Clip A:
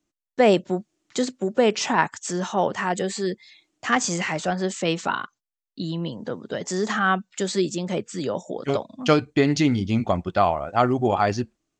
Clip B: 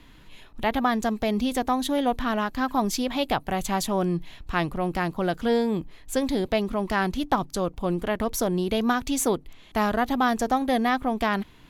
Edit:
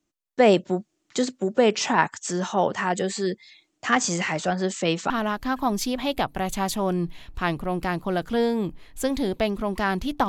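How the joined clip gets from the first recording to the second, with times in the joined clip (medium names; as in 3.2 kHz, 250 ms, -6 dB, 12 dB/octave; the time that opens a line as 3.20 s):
clip A
5.10 s: go over to clip B from 2.22 s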